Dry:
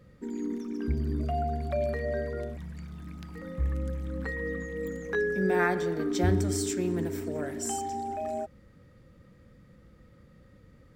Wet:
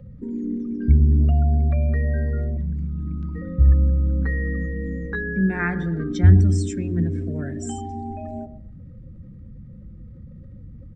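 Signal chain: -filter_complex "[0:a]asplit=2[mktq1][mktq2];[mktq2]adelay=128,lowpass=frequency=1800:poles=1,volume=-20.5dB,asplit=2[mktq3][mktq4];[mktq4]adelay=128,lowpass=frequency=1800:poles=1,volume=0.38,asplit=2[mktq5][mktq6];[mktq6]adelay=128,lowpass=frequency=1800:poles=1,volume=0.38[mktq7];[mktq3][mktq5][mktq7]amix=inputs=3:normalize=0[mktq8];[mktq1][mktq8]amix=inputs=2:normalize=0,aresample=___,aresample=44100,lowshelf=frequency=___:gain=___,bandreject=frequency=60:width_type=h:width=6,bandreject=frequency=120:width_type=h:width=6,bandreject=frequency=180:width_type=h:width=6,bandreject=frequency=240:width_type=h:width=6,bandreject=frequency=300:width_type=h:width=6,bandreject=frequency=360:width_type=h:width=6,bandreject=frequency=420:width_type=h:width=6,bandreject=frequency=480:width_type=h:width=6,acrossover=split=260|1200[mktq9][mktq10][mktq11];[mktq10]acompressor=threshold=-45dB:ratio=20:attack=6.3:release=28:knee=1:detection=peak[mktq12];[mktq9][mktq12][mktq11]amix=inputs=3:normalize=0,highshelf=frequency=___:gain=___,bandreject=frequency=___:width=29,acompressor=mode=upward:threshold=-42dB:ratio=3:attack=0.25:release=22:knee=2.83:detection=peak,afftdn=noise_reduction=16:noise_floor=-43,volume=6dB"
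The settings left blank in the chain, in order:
22050, 240, 11.5, 5200, -11, 4500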